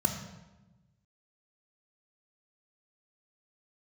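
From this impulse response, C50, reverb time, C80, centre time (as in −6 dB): 6.0 dB, 1.1 s, 8.0 dB, 30 ms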